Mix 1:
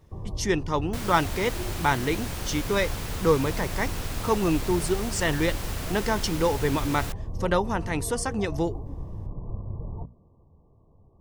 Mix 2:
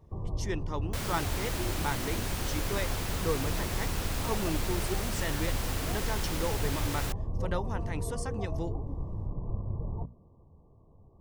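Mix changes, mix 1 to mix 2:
speech -10.5 dB; second sound: add steep high-pass 170 Hz

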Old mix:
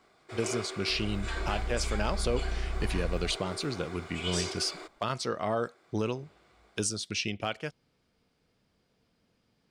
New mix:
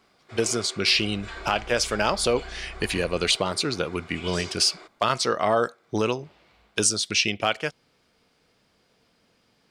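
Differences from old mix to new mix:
speech +10.5 dB; first sound: add distance through air 51 m; master: add bass shelf 300 Hz -9.5 dB

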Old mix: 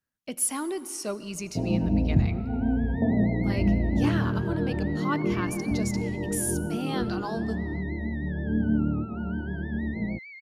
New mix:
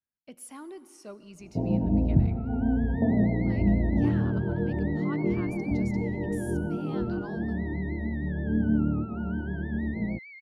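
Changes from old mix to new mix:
speech -11.0 dB; master: add treble shelf 4 kHz -9.5 dB

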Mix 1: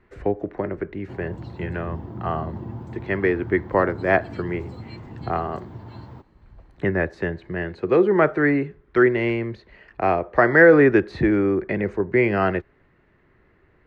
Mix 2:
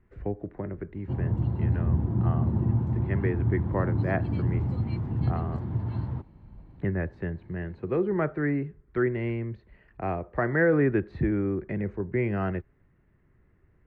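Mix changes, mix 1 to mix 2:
speech -11.5 dB; master: add tone controls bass +11 dB, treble -13 dB

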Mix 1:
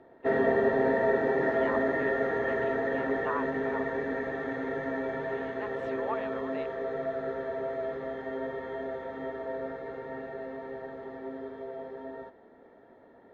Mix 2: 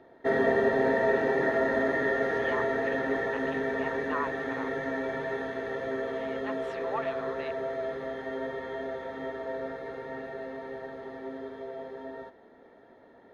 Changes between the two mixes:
speech: entry +0.85 s; master: add treble shelf 3.4 kHz +11.5 dB

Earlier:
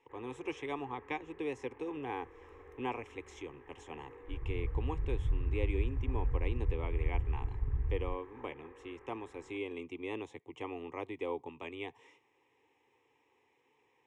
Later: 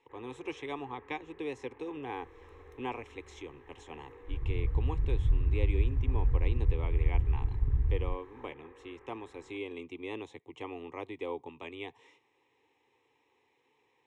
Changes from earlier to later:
second sound +5.5 dB; master: add peaking EQ 4 kHz +8 dB 0.34 oct

